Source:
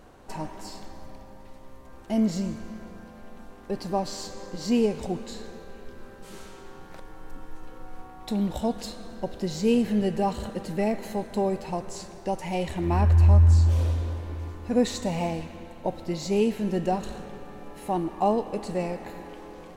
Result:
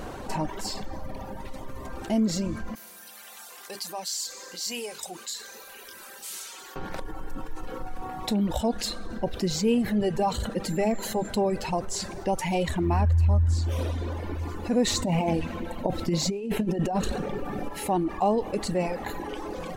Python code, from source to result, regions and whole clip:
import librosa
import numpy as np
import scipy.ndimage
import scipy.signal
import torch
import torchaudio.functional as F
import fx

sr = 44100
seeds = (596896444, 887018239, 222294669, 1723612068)

y = fx.chain(x, sr, fx.differentiator(),
    fx.hum_notches(base_hz=50, count=8), at=(2.75, 6.76))
y = fx.dmg_tone(y, sr, hz=7300.0, level_db=-52.0, at=(10.66, 11.28), fade=0.02)
y = fx.hum_notches(y, sr, base_hz=50, count=6, at=(10.66, 11.28), fade=0.02)
y = fx.chain(y, sr, fx.peak_eq(hz=210.0, db=3.5, octaves=2.2),
    fx.over_compress(threshold_db=-26.0, ratio=-0.5), at=(14.87, 17.69))
y = fx.dereverb_blind(y, sr, rt60_s=1.3)
y = fx.env_flatten(y, sr, amount_pct=50)
y = y * librosa.db_to_amplitude(-2.5)